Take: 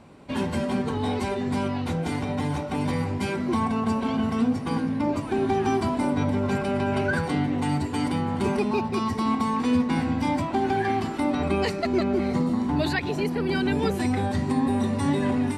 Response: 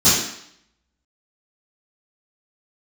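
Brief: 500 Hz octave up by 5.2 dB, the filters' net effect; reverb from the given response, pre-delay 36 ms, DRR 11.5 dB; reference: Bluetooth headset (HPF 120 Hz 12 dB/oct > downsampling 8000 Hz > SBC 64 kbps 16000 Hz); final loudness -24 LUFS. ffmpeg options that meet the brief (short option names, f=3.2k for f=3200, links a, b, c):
-filter_complex "[0:a]equalizer=f=500:t=o:g=7,asplit=2[a][b];[1:a]atrim=start_sample=2205,adelay=36[c];[b][c]afir=irnorm=-1:irlink=0,volume=-32.5dB[d];[a][d]amix=inputs=2:normalize=0,highpass=120,aresample=8000,aresample=44100,volume=-1.5dB" -ar 16000 -c:a sbc -b:a 64k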